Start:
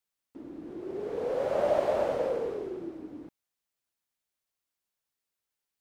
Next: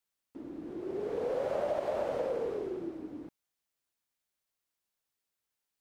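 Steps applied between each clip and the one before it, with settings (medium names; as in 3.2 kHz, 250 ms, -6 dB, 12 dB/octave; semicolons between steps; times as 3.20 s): compression 5:1, threshold -29 dBFS, peak gain reduction 8.5 dB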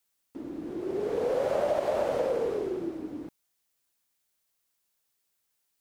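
treble shelf 5.2 kHz +6 dB; trim +5 dB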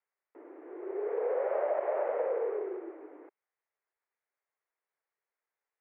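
elliptic band-pass 400–2100 Hz, stop band 40 dB; trim -2.5 dB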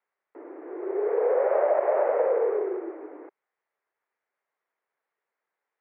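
band-pass 190–2400 Hz; trim +8 dB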